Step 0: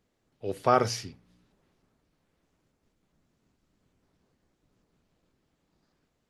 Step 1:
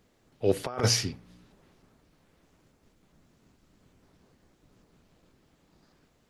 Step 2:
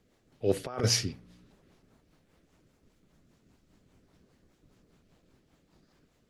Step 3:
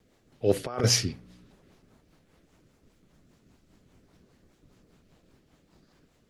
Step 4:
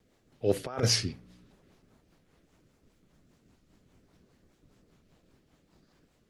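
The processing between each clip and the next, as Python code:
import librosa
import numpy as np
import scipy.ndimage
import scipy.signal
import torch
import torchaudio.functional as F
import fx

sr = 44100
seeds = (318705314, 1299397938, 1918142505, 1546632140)

y1 = fx.over_compress(x, sr, threshold_db=-29.0, ratio=-0.5)
y1 = y1 * librosa.db_to_amplitude(4.5)
y2 = fx.rotary(y1, sr, hz=5.0)
y3 = fx.vibrato(y2, sr, rate_hz=2.5, depth_cents=42.0)
y3 = y3 * librosa.db_to_amplitude(3.5)
y4 = fx.record_warp(y3, sr, rpm=45.0, depth_cents=100.0)
y4 = y4 * librosa.db_to_amplitude(-3.0)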